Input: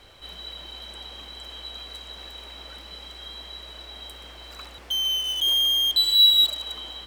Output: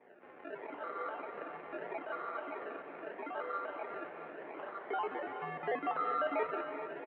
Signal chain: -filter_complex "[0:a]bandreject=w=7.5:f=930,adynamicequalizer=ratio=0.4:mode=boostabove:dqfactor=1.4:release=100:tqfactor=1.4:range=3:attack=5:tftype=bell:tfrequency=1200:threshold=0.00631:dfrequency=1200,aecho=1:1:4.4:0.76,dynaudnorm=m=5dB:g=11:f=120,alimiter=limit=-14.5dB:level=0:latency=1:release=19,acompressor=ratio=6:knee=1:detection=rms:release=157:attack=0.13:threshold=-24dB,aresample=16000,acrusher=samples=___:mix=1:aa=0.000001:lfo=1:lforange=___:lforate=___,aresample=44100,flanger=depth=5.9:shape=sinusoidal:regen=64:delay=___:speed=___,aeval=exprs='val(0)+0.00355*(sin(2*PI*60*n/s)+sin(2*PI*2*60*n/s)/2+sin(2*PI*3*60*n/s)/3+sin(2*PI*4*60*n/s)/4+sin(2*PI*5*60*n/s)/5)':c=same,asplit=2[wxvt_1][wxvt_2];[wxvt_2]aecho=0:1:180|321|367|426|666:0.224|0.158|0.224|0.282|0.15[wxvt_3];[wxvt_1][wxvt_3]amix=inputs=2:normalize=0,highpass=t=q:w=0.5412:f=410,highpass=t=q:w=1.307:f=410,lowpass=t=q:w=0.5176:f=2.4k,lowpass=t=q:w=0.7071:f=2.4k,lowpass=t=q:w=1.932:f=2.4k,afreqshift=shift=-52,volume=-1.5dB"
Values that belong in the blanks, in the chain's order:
11, 11, 0.78, 9, 0.56